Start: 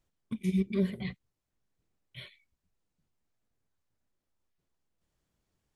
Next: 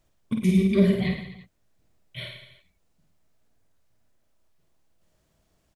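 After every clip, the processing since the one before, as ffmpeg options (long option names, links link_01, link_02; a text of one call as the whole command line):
ffmpeg -i in.wav -af "equalizer=frequency=640:width=6.8:gain=8,aecho=1:1:50|107.5|173.6|249.7|337.1:0.631|0.398|0.251|0.158|0.1,volume=8.5dB" out.wav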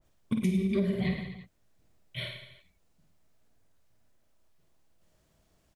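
ffmpeg -i in.wav -af "acompressor=threshold=-24dB:ratio=10,adynamicequalizer=threshold=0.00251:dfrequency=1900:dqfactor=0.7:tfrequency=1900:tqfactor=0.7:attack=5:release=100:ratio=0.375:range=1.5:mode=cutabove:tftype=highshelf" out.wav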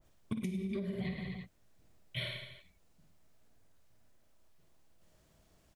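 ffmpeg -i in.wav -af "acompressor=threshold=-35dB:ratio=16,volume=1.5dB" out.wav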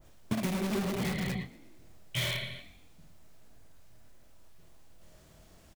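ffmpeg -i in.wav -filter_complex "[0:a]asplit=2[link_01][link_02];[link_02]aeval=exprs='(mod(59.6*val(0)+1,2)-1)/59.6':channel_layout=same,volume=-4dB[link_03];[link_01][link_03]amix=inputs=2:normalize=0,asplit=2[link_04][link_05];[link_05]adelay=24,volume=-11dB[link_06];[link_04][link_06]amix=inputs=2:normalize=0,asplit=5[link_07][link_08][link_09][link_10][link_11];[link_08]adelay=117,afreqshift=44,volume=-20dB[link_12];[link_09]adelay=234,afreqshift=88,volume=-25.5dB[link_13];[link_10]adelay=351,afreqshift=132,volume=-31dB[link_14];[link_11]adelay=468,afreqshift=176,volume=-36.5dB[link_15];[link_07][link_12][link_13][link_14][link_15]amix=inputs=5:normalize=0,volume=5dB" out.wav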